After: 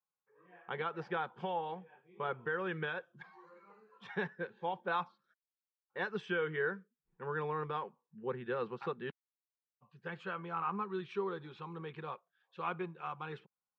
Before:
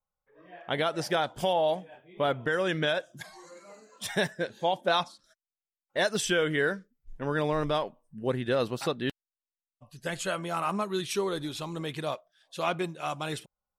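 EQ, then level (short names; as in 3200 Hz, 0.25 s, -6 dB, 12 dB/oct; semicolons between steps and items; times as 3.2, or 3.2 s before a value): HPF 140 Hz; ladder low-pass 2200 Hz, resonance 90%; fixed phaser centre 420 Hz, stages 8; +6.5 dB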